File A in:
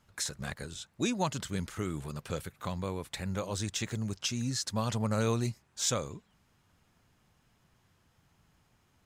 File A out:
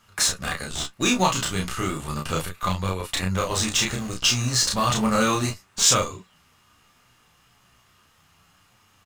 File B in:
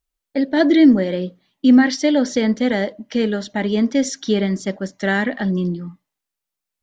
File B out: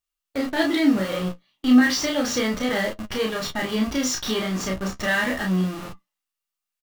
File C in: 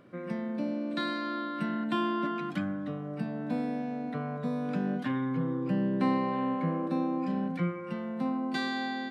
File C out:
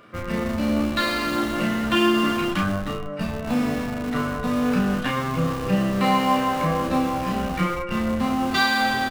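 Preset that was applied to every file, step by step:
tilt shelf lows -4.5 dB, about 810 Hz; in parallel at -5 dB: Schmitt trigger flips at -33.5 dBFS; on the sum: small resonant body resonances 1.2/2.8 kHz, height 8 dB, ringing for 25 ms; flange 0.34 Hz, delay 9 ms, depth 8.8 ms, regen +37%; doubling 32 ms -2.5 dB; normalise loudness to -23 LUFS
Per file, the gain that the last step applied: +10.5 dB, -4.0 dB, +10.5 dB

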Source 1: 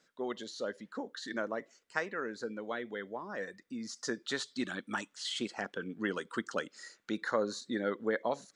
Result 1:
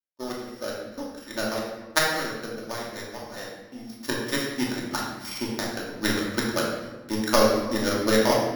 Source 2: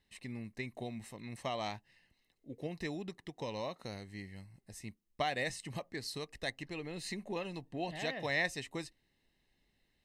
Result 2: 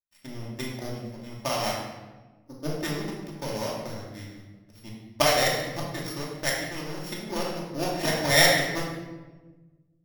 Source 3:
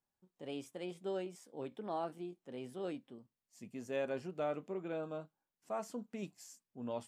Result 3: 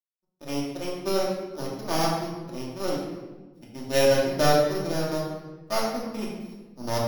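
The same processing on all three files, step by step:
sorted samples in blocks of 8 samples; power-law waveshaper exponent 2; simulated room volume 800 m³, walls mixed, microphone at 2.6 m; normalise loudness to -27 LUFS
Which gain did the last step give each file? +14.0 dB, +16.5 dB, +16.0 dB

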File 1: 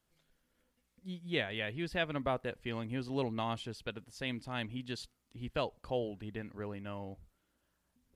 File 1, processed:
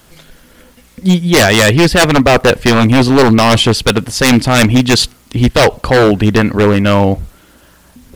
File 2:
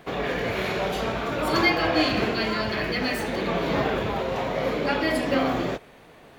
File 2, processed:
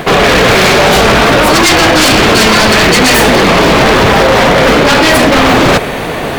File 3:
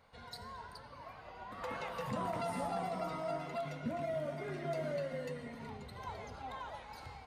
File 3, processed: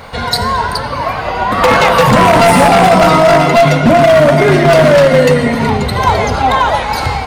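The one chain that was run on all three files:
reverse; compression 6:1, threshold -34 dBFS; reverse; wavefolder -35.5 dBFS; peak normalisation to -1.5 dBFS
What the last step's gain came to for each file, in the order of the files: +34.0 dB, +34.0 dB, +34.0 dB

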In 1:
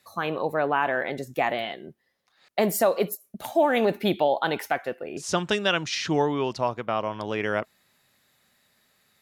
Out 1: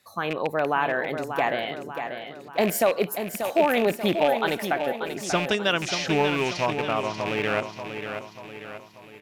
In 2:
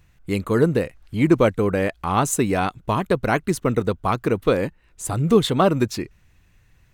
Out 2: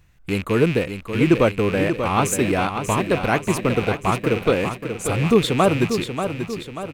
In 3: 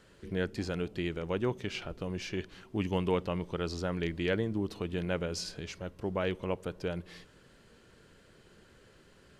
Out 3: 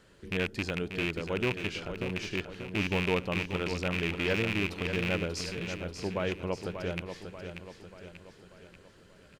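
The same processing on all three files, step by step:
rattle on loud lows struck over -33 dBFS, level -19 dBFS; on a send: feedback delay 587 ms, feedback 50%, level -8 dB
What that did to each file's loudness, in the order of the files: +0.5 LU, +0.5 LU, +2.5 LU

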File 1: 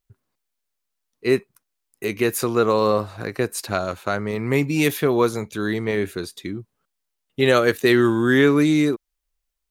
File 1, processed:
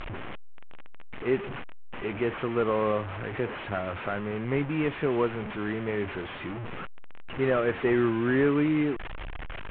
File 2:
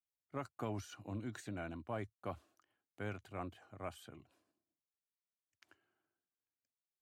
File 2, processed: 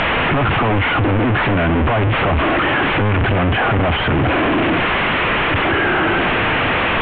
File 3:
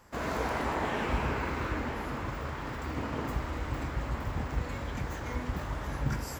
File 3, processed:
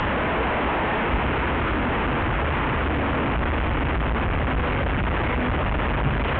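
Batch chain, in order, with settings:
one-bit delta coder 16 kbps, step -22 dBFS; distance through air 160 m; peak normalisation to -12 dBFS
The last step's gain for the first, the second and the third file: -7.0 dB, +13.5 dB, +6.0 dB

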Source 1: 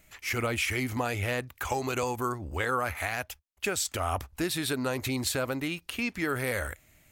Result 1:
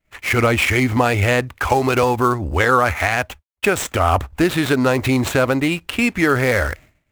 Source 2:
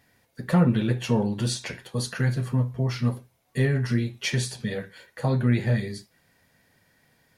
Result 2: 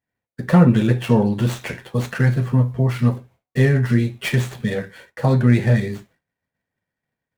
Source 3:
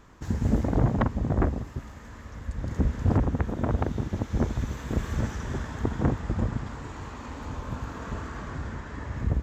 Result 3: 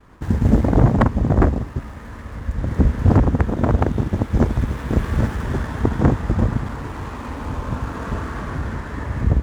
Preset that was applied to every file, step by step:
median filter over 9 samples; expander -49 dBFS; peak normalisation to -3 dBFS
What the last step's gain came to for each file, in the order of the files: +14.0 dB, +7.0 dB, +9.0 dB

